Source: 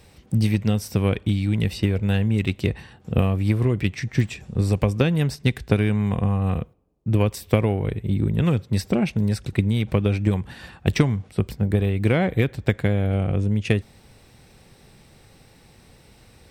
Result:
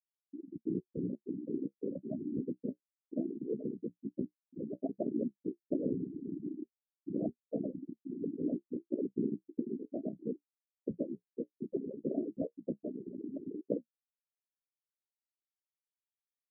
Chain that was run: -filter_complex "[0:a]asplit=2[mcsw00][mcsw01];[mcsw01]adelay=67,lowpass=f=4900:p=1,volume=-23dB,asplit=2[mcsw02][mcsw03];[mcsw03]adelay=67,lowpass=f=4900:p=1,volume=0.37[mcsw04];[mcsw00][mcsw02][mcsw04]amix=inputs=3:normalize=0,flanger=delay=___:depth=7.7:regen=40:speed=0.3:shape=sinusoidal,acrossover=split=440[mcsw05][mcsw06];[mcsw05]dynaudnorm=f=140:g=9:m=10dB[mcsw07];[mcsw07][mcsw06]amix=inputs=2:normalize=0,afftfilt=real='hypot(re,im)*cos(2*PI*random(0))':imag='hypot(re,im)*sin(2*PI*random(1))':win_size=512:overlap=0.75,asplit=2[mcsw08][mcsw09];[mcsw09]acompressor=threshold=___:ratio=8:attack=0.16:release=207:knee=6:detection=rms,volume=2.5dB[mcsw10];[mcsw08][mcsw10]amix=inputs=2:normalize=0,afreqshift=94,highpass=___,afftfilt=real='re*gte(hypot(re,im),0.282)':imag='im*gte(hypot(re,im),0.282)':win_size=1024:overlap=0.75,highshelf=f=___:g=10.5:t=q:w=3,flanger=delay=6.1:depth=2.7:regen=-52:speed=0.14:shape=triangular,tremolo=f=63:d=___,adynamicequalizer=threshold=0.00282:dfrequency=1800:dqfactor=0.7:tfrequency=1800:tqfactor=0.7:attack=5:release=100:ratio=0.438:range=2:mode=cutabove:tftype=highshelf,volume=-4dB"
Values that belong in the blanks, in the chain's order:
5.8, -33dB, 280, 5700, 0.621